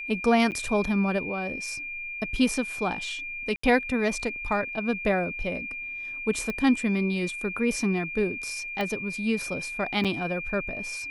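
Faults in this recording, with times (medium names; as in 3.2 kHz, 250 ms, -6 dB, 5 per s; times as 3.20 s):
whine 2.4 kHz -33 dBFS
0.51–0.52 s: dropout 8.9 ms
3.56–3.63 s: dropout 74 ms
6.50 s: pop -18 dBFS
8.81 s: pop -18 dBFS
10.04–10.05 s: dropout 7 ms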